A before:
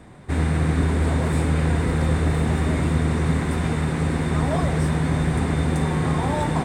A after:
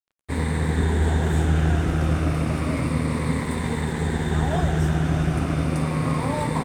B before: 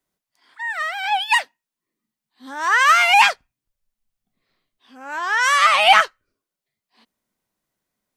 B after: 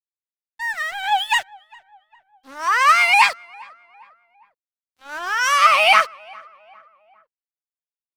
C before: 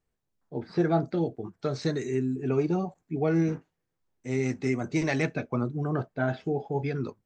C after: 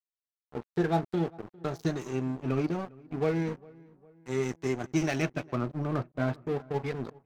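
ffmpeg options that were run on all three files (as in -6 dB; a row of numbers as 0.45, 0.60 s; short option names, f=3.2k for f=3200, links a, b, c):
-filter_complex "[0:a]afftfilt=real='re*pow(10,8/40*sin(2*PI*(0.96*log(max(b,1)*sr/1024/100)/log(2)-(-0.31)*(pts-256)/sr)))':imag='im*pow(10,8/40*sin(2*PI*(0.96*log(max(b,1)*sr/1024/100)/log(2)-(-0.31)*(pts-256)/sr)))':win_size=1024:overlap=0.75,aeval=exprs='sgn(val(0))*max(abs(val(0))-0.0158,0)':c=same,asplit=2[a][b];[b]adelay=404,lowpass=f=1.7k:p=1,volume=-23.5dB,asplit=2[c][d];[d]adelay=404,lowpass=f=1.7k:p=1,volume=0.52,asplit=2[e][f];[f]adelay=404,lowpass=f=1.7k:p=1,volume=0.52[g];[c][e][g]amix=inputs=3:normalize=0[h];[a][h]amix=inputs=2:normalize=0,volume=-1dB"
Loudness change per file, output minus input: -1.0, -0.5, -2.5 LU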